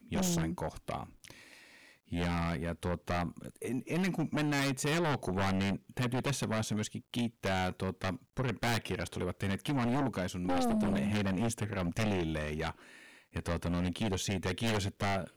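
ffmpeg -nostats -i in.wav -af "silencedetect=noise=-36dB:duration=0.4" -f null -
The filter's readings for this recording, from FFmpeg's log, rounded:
silence_start: 1.30
silence_end: 2.12 | silence_duration: 0.82
silence_start: 12.71
silence_end: 13.36 | silence_duration: 0.65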